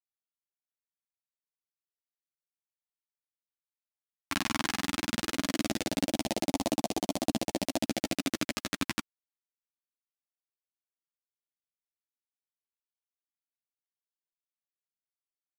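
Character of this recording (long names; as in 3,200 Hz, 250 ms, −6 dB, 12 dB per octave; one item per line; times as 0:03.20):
phaser sweep stages 2, 0.18 Hz, lowest notch 540–1,400 Hz
a quantiser's noise floor 10 bits, dither none
a shimmering, thickened sound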